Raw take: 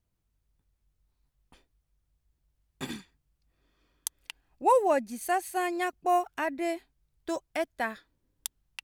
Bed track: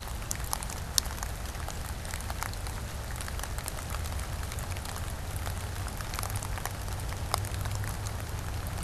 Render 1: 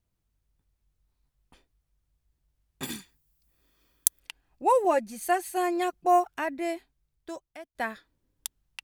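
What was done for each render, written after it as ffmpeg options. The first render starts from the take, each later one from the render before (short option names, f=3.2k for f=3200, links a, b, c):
-filter_complex "[0:a]asettb=1/sr,asplit=3[a][b][c];[a]atrim=end=2.834[d];[b]atrim=start=2.83:end=4.2,asetpts=PTS-STARTPTS,afade=t=in:d=0.004:c=qsin,afade=t=out:st=1.366:d=0.004:c=qsin,aemphasis=mode=production:type=50fm[e];[c]atrim=start=4.196[f];[d][e]acrossfade=d=0.004:c1=hsin:c2=qsin[g];[g][f]acrossfade=d=0.004:c1=qsin:c2=hsin,asettb=1/sr,asplit=3[h][i][j];[h]atrim=end=4.844[k];[i]atrim=start=4.84:end=6.25,asetpts=PTS-STARTPTS,afade=t=in:d=0.004:c=qsin,afade=t=out:st=1.406:d=0.004:c=qsin,aecho=1:1:5.8:0.65,atrim=end_sample=62181[l];[j]atrim=start=6.246[m];[k][l]acrossfade=d=0.004:c1=hsin:c2=qsin[n];[n][m]acrossfade=d=0.004:c1=qsin:c2=hsin,asplit=2[o][p];[o]atrim=end=7.75,asetpts=PTS-STARTPTS,afade=t=out:st=6.76:d=0.99:silence=0.0707946[q];[p]atrim=start=7.75,asetpts=PTS-STARTPTS,afade=t=in:d=0.004:c=hsin:silence=0.0707946[r];[q][r]concat=n=2:v=0:a=1"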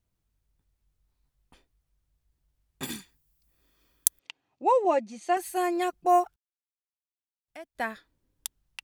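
-filter_complex "[0:a]asettb=1/sr,asplit=3[a][b][c];[a]atrim=end=4.194[d];[b]atrim=start=4.19:end=5.37,asetpts=PTS-STARTPTS,afade=t=in:d=0.004:c=qsin,afade=t=out:st=1.176:d=0.004:c=qsin,highpass=f=120:w=0.5412,highpass=f=120:w=1.3066,equalizer=f=160:t=q:w=4:g=-7,equalizer=f=1.6k:t=q:w=4:g=-8,equalizer=f=4.9k:t=q:w=4:g=-4,lowpass=f=6.5k:w=0.5412,lowpass=f=6.5k:w=1.3066[e];[c]atrim=start=5.366[f];[d][e]acrossfade=d=0.004:c1=hsin:c2=qsin[g];[g][f]acrossfade=d=0.004:c1=qsin:c2=hsin,asplit=3[h][i][j];[h]atrim=end=6.36,asetpts=PTS-STARTPTS,afade=t=out:st=6.356:d=0.004:c=hsin[k];[i]atrim=start=6.36:end=7.48,asetpts=PTS-STARTPTS,volume=0[l];[j]atrim=start=7.48,asetpts=PTS-STARTPTS,afade=t=in:d=0.004:c=hsin[m];[k][l][m]concat=n=3:v=0:a=1"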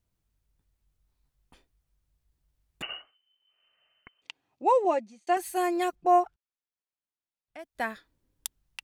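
-filter_complex "[0:a]asettb=1/sr,asplit=3[a][b][c];[a]atrim=end=2.824[d];[b]atrim=start=2.82:end=4.22,asetpts=PTS-STARTPTS,afade=t=in:d=0.004:c=qsin,afade=t=out:st=1.396:d=0.004:c=qsin,lowpass=f=2.6k:t=q:w=0.5098,lowpass=f=2.6k:t=q:w=0.6013,lowpass=f=2.6k:t=q:w=0.9,lowpass=f=2.6k:t=q:w=2.563,afreqshift=-3100[e];[c]atrim=start=4.216[f];[d][e]acrossfade=d=0.004:c1=hsin:c2=qsin[g];[g][f]acrossfade=d=0.004:c1=qsin:c2=hsin,asettb=1/sr,asplit=3[h][i][j];[h]atrim=end=5.954[k];[i]atrim=start=5.95:end=7.59,asetpts=PTS-STARTPTS,afade=t=in:d=0.004:c=qsin,afade=t=out:st=1.636:d=0.004:c=qsin,aemphasis=mode=reproduction:type=50fm[l];[j]atrim=start=7.586[m];[k][l]acrossfade=d=0.004:c1=hsin:c2=qsin[n];[n][m]acrossfade=d=0.004:c1=qsin:c2=hsin,asplit=2[o][p];[o]atrim=end=5.27,asetpts=PTS-STARTPTS,afade=t=out:st=4.84:d=0.43[q];[p]atrim=start=5.27,asetpts=PTS-STARTPTS,afade=t=in:d=0.004:c=hsin[r];[q][r]concat=n=2:v=0:a=1"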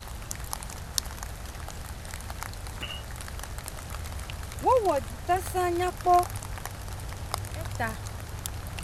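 -filter_complex "[1:a]volume=-2dB[a];[0:a][a]amix=inputs=2:normalize=0"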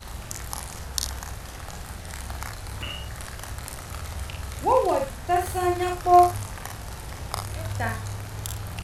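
-filter_complex "[0:a]asplit=2[a][b];[b]adelay=48,volume=-5.5dB[c];[a][c]amix=inputs=2:normalize=0,aecho=1:1:31|59:0.376|0.376"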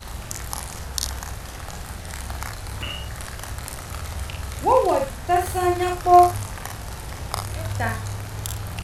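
-af "volume=3dB,alimiter=limit=-3dB:level=0:latency=1"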